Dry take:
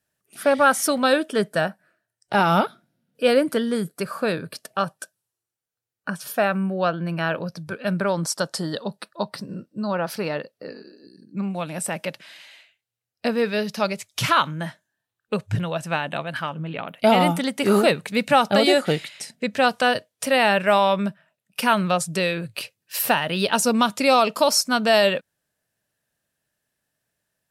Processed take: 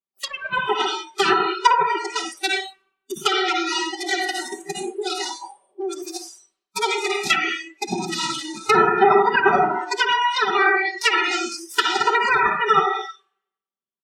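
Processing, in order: in parallel at 0 dB: compressor 4:1, threshold -30 dBFS, peak gain reduction 15 dB; on the sum: added harmonics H 2 -12 dB, 7 -13 dB, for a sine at -4 dBFS; on a send: thinning echo 0.174 s, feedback 46%, level -17.5 dB; on the sum: plate-style reverb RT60 1.7 s, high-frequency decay 0.7×, pre-delay 95 ms, DRR 4.5 dB; one-sided clip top -19 dBFS; HPF 71 Hz 6 dB/oct; wide varispeed 1.96×; treble ducked by the level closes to 1600 Hz, closed at -16.5 dBFS; comb 5.2 ms, depth 92%; spectral noise reduction 26 dB; mismatched tape noise reduction decoder only; gain +4 dB

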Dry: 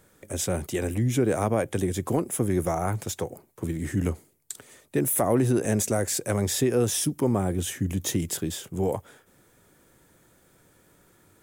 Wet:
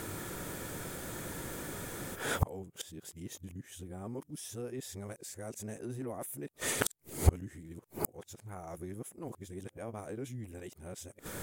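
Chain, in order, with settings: whole clip reversed; flipped gate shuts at -29 dBFS, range -36 dB; gain +18 dB

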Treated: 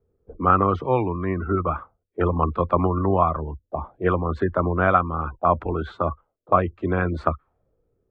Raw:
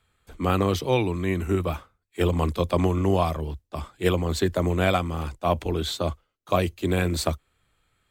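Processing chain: spectral gate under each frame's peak -30 dB strong; envelope low-pass 430–1300 Hz up, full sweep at -25.5 dBFS

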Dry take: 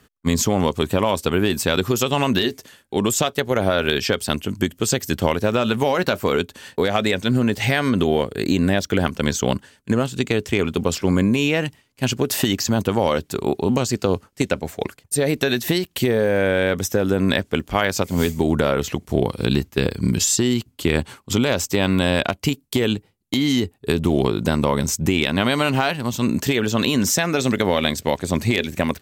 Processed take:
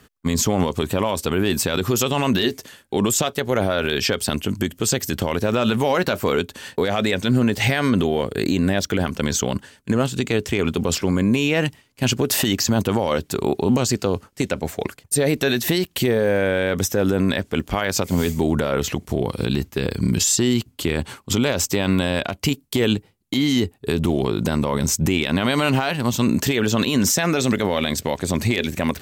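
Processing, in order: reverse; upward compressor, threshold -40 dBFS; reverse; maximiser +12 dB; gain -8.5 dB

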